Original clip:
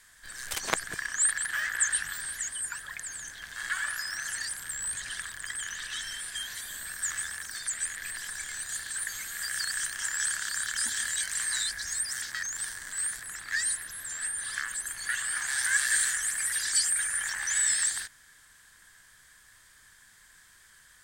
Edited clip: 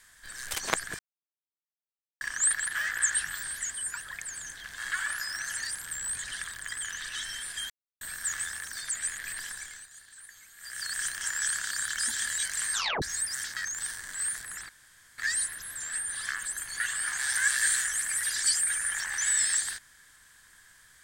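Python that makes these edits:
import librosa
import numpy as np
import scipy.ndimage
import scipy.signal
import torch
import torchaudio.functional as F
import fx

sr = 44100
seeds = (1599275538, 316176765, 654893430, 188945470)

y = fx.edit(x, sr, fx.insert_silence(at_s=0.99, length_s=1.22),
    fx.silence(start_s=6.48, length_s=0.31),
    fx.fade_down_up(start_s=8.21, length_s=1.6, db=-15.5, fade_s=0.46),
    fx.tape_stop(start_s=11.51, length_s=0.29),
    fx.insert_room_tone(at_s=13.47, length_s=0.49), tone=tone)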